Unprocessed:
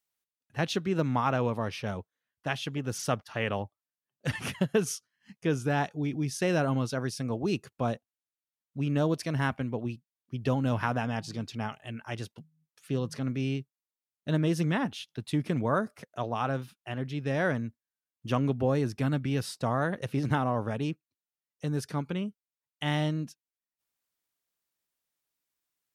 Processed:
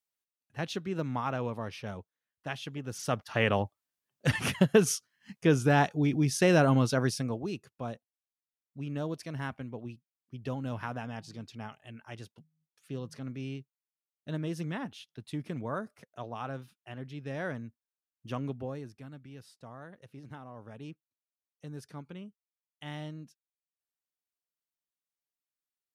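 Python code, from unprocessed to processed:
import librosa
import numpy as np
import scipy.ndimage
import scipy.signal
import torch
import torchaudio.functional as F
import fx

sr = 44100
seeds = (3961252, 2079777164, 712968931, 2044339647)

y = fx.gain(x, sr, db=fx.line((2.95, -5.5), (3.36, 4.0), (7.1, 4.0), (7.54, -8.0), (18.5, -8.0), (19.07, -19.0), (20.49, -19.0), (20.9, -12.0)))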